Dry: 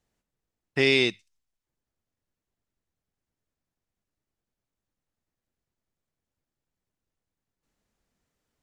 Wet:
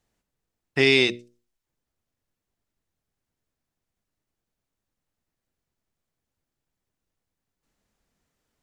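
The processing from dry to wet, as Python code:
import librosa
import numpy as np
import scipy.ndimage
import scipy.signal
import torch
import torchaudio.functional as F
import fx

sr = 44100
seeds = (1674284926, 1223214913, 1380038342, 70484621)

y = fx.hum_notches(x, sr, base_hz=60, count=10)
y = F.gain(torch.from_numpy(y), 3.0).numpy()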